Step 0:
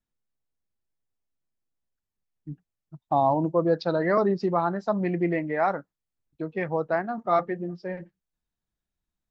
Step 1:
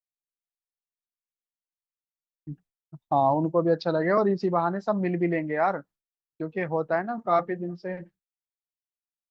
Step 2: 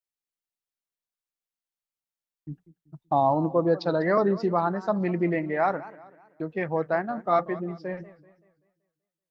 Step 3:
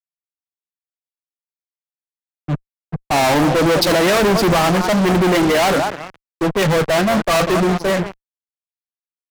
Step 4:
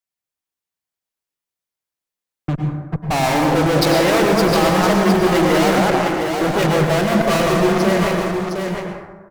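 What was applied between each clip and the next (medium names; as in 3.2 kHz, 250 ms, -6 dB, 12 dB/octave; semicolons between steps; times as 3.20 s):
expander -50 dBFS
modulated delay 191 ms, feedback 42%, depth 201 cents, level -18 dB
vibrato 0.8 Hz 87 cents; fuzz box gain 46 dB, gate -45 dBFS; three bands expanded up and down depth 70%
in parallel at -0.5 dB: compressor with a negative ratio -22 dBFS, ratio -0.5; on the sum: delay 710 ms -6 dB; plate-style reverb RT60 1.3 s, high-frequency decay 0.4×, pre-delay 90 ms, DRR 2 dB; trim -5.5 dB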